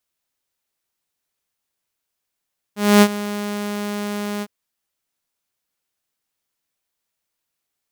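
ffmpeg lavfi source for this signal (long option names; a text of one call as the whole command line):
ffmpeg -f lavfi -i "aevalsrc='0.596*(2*mod(206*t,1)-1)':duration=1.708:sample_rate=44100,afade=type=in:duration=0.256,afade=type=out:start_time=0.256:duration=0.06:silence=0.15,afade=type=out:start_time=1.66:duration=0.048" out.wav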